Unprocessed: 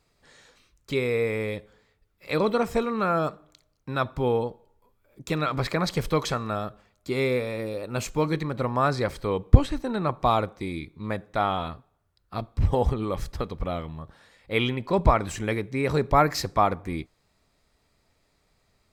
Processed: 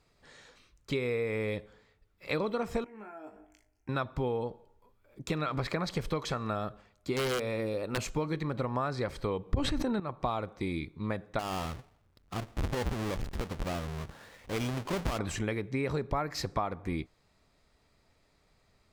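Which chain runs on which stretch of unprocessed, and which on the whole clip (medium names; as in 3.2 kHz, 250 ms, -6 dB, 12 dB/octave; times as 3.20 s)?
2.84–3.89 s: compression 16:1, threshold -38 dBFS + static phaser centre 790 Hz, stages 8 + flutter echo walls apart 3.3 m, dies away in 0.21 s
7.13–7.98 s: hum notches 60/120 Hz + integer overflow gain 18.5 dB
9.48–10.00 s: peaking EQ 110 Hz +6 dB 2.2 oct + decay stretcher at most 25 dB/s
11.39–15.19 s: square wave that keeps the level + compression 2:1, threshold -38 dBFS
whole clip: treble shelf 9.1 kHz -8.5 dB; compression 8:1, threshold -28 dBFS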